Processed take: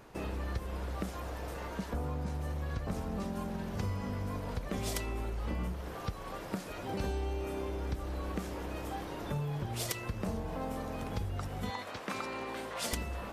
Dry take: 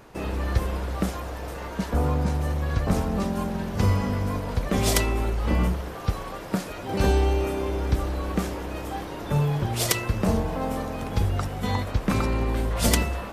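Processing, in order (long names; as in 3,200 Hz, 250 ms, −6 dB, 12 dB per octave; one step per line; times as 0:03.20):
0:11.70–0:12.93: meter weighting curve A
downward compressor 3 to 1, threshold −29 dBFS, peak gain reduction 10 dB
level −5.5 dB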